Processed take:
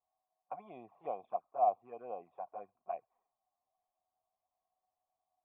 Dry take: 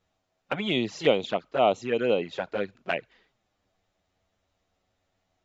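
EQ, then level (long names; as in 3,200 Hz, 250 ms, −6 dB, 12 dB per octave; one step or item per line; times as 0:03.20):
formant resonators in series a
−1.5 dB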